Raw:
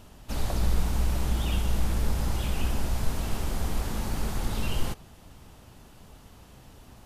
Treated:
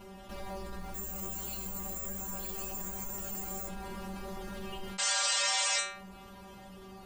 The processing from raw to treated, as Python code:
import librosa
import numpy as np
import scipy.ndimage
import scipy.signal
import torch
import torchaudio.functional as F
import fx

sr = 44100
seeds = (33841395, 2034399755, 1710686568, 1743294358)

y = fx.highpass(x, sr, hz=53.0, slope=6)
y = np.clip(y, -10.0 ** (-30.0 / 20.0), 10.0 ** (-30.0 / 20.0))
y = fx.resample_bad(y, sr, factor=6, down='filtered', up='zero_stuff', at=(0.94, 3.67))
y = fx.peak_eq(y, sr, hz=9100.0, db=-10.5, octaves=2.8)
y = fx.spec_paint(y, sr, seeds[0], shape='noise', start_s=4.98, length_s=0.82, low_hz=430.0, high_hz=8600.0, level_db=-17.0)
y = fx.peak_eq(y, sr, hz=160.0, db=-11.5, octaves=0.29)
y = fx.stiff_resonator(y, sr, f0_hz=190.0, decay_s=0.41, stiffness=0.002)
y = fx.env_flatten(y, sr, amount_pct=50)